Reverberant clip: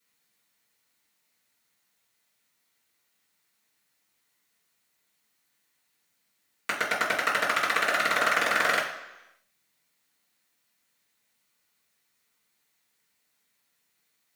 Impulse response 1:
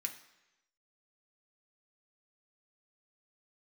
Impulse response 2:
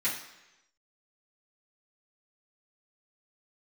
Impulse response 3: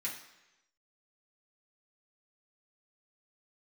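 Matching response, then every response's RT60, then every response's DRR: 2; 1.0, 1.0, 1.0 s; 2.5, -11.5, -6.5 dB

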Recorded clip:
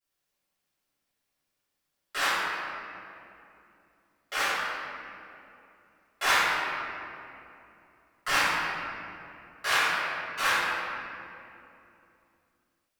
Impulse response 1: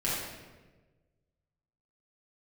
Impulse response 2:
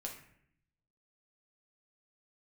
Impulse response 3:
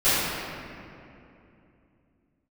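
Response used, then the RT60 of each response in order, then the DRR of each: 3; 1.3, 0.65, 2.8 s; -9.0, -0.5, -18.5 dB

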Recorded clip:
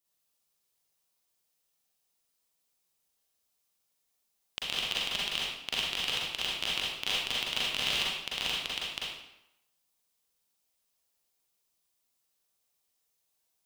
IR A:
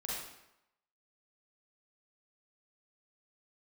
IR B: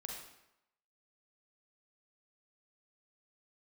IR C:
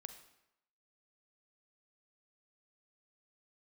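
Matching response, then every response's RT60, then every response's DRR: A; 0.85, 0.85, 0.85 s; -6.0, -0.5, 8.0 dB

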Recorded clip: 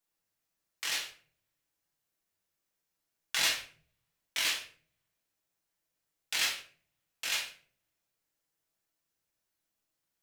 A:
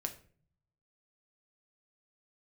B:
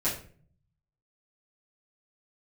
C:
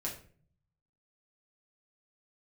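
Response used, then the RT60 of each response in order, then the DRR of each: C; 0.45, 0.45, 0.45 s; 4.5, -11.5, -4.0 dB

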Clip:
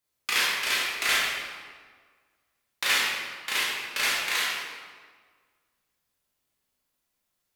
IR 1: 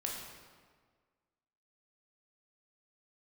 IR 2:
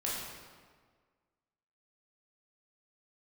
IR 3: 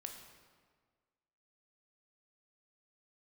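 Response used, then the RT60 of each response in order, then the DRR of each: 2; 1.6, 1.6, 1.6 s; -1.5, -6.0, 3.5 dB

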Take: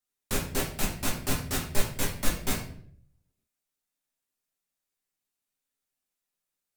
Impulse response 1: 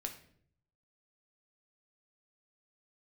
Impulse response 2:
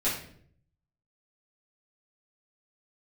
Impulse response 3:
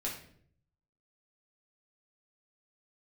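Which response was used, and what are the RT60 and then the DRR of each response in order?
3; 0.60, 0.60, 0.60 s; 3.5, -10.5, -4.5 dB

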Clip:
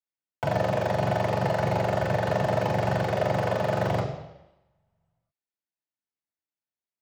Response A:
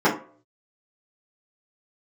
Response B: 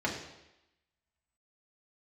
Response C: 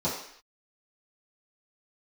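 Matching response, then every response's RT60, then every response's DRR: B; 0.45 s, 0.90 s, not exponential; -10.0, -3.0, -11.5 dB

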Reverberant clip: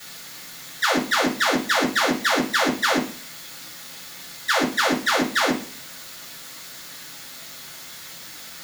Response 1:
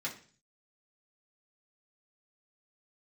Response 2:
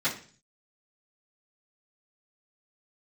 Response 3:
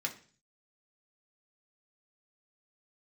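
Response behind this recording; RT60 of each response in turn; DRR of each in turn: 2; 0.40, 0.40, 0.40 s; -5.5, -14.0, 0.5 dB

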